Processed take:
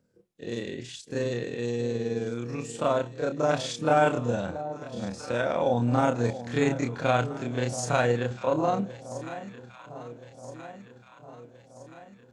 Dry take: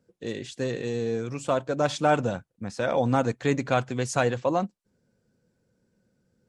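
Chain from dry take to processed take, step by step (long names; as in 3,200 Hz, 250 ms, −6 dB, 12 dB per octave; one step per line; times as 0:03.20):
delay that swaps between a low-pass and a high-pass 349 ms, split 930 Hz, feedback 73%, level −12.5 dB
time stretch by overlap-add 1.9×, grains 106 ms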